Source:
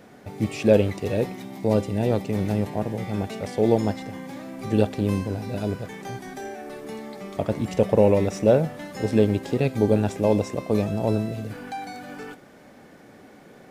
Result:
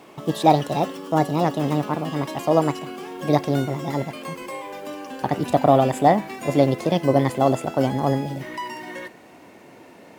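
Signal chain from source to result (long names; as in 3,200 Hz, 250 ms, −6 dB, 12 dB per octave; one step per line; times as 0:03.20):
gliding playback speed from 148% → 121%
dynamic equaliser 1,900 Hz, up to +7 dB, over −52 dBFS, Q 4.2
high-pass filter 52 Hz
level +2 dB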